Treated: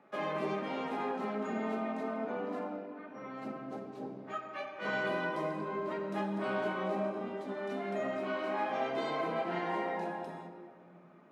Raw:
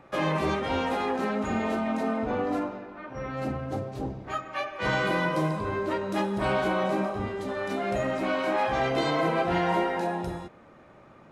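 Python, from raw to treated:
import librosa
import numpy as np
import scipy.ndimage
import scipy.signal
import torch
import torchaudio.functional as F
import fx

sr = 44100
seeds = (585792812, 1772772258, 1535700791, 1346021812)

y = scipy.signal.sosfilt(scipy.signal.butter(4, 190.0, 'highpass', fs=sr, output='sos'), x)
y = fx.high_shelf(y, sr, hz=4200.0, db=-9.0)
y = fx.room_shoebox(y, sr, seeds[0], volume_m3=3600.0, walls='mixed', distance_m=1.4)
y = F.gain(torch.from_numpy(y), -9.0).numpy()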